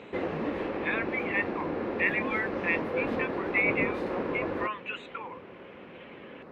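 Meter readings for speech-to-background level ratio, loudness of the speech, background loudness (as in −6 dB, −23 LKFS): 1.0 dB, −31.5 LKFS, −32.5 LKFS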